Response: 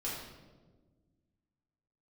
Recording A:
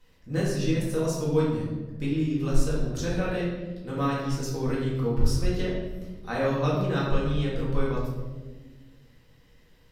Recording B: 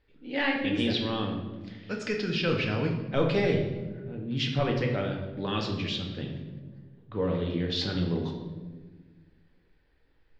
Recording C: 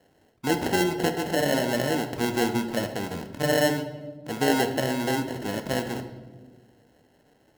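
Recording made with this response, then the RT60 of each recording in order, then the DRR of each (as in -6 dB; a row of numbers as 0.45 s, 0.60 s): A; 1.4 s, 1.4 s, 1.4 s; -7.5 dB, 1.0 dB, 6.5 dB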